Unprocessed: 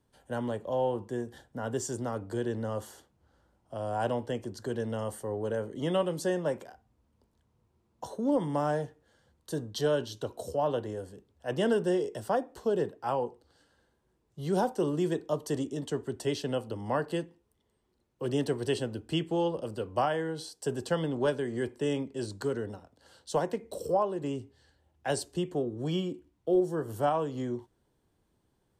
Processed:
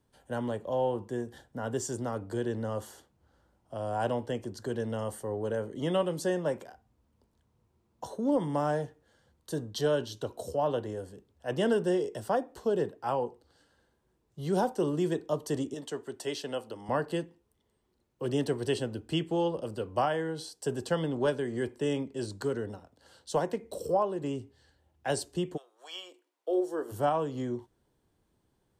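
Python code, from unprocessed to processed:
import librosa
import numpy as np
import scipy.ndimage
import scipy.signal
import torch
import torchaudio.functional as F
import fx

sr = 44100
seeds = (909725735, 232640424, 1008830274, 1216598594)

y = fx.highpass(x, sr, hz=480.0, slope=6, at=(15.74, 16.89))
y = fx.highpass(y, sr, hz=fx.line((25.56, 1100.0), (26.91, 260.0)), slope=24, at=(25.56, 26.91), fade=0.02)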